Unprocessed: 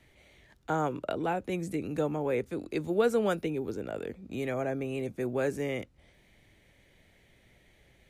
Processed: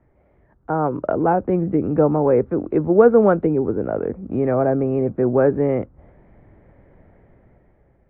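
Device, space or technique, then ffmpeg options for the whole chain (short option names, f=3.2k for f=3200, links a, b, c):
action camera in a waterproof case: -af "lowpass=f=1.3k:w=0.5412,lowpass=f=1.3k:w=1.3066,dynaudnorm=f=200:g=9:m=10dB,volume=4dB" -ar 48000 -c:a aac -b:a 64k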